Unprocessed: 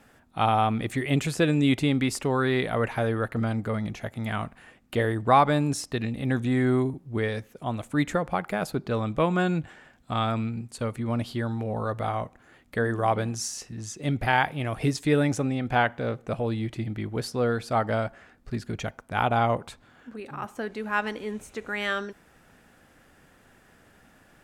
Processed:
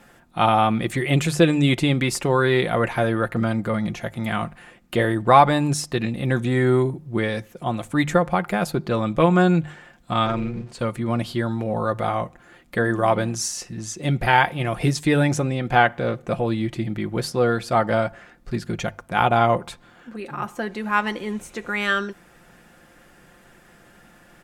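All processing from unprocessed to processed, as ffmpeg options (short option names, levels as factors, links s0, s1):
-filter_complex "[0:a]asettb=1/sr,asplit=3[s0][s1][s2];[s0]atrim=end=10.264[s3];[s1]atrim=start=10.26:end=10.79,asetpts=PTS-STARTPTS,afade=t=in:d=0.004:c=qsin,afade=t=out:st=0.526:d=0.004:c=qsin,aeval=exprs='val(0)+0.5*0.00596*sgn(val(0))':c=same,tremolo=f=250:d=0.571,adynamicsmooth=sensitivity=3.5:basefreq=5400[s4];[s2]atrim=start=10.786[s5];[s3][s4]acrossfade=d=0.004:c1=hsin:c2=qsin[s6];[s6][s5]acrossfade=d=0.004:c1=qsin:c2=hsin,bandreject=f=50:t=h:w=6,bandreject=f=100:t=h:w=6,bandreject=f=150:t=h:w=6,aecho=1:1:5.7:0.47,volume=1.78"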